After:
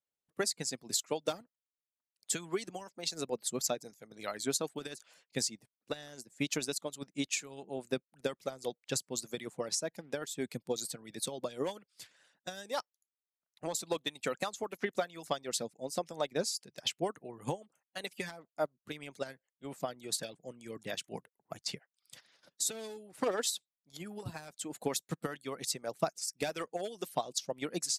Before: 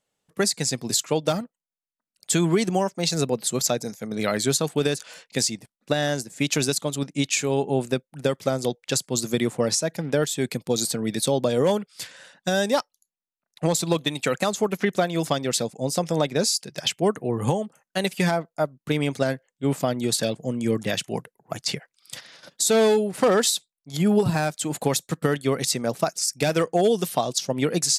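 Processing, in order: harmonic-percussive split harmonic -13 dB; upward expander 1.5:1, over -34 dBFS; gain -7.5 dB

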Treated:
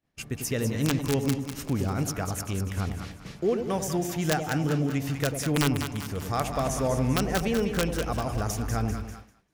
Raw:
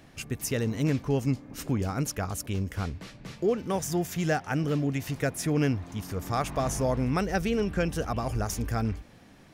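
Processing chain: wrapped overs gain 15.5 dB; split-band echo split 870 Hz, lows 95 ms, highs 0.197 s, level -7 dB; expander -38 dBFS

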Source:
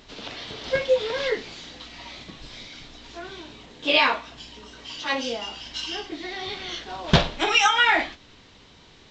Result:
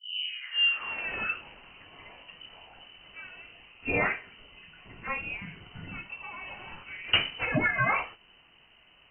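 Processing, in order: tape start at the beginning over 1.59 s; inverted band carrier 3000 Hz; gain -7 dB

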